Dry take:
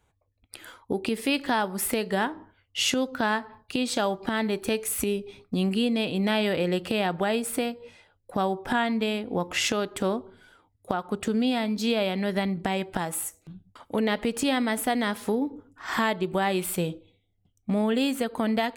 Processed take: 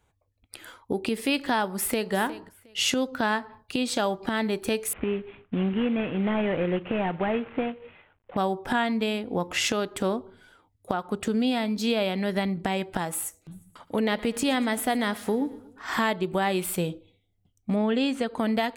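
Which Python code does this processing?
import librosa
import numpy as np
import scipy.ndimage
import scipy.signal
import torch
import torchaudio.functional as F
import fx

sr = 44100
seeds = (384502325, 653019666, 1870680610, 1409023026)

y = fx.echo_throw(x, sr, start_s=1.67, length_s=0.45, ms=360, feedback_pct=20, wet_db=-14.5)
y = fx.cvsd(y, sr, bps=16000, at=(4.93, 8.37))
y = fx.echo_feedback(y, sr, ms=118, feedback_pct=51, wet_db=-19, at=(13.51, 16.11), fade=0.02)
y = fx.lowpass(y, sr, hz=fx.line((17.75, 3800.0), (18.38, 8400.0)), slope=12, at=(17.75, 18.38), fade=0.02)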